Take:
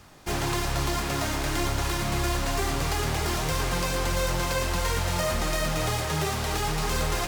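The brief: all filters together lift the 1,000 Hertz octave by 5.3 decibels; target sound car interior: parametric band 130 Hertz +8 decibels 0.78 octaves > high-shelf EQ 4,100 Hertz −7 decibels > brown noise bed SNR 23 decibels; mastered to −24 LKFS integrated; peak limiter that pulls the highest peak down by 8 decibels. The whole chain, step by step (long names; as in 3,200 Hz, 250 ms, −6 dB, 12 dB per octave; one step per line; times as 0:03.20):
parametric band 1,000 Hz +7 dB
brickwall limiter −21.5 dBFS
parametric band 130 Hz +8 dB 0.78 octaves
high-shelf EQ 4,100 Hz −7 dB
brown noise bed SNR 23 dB
level +5.5 dB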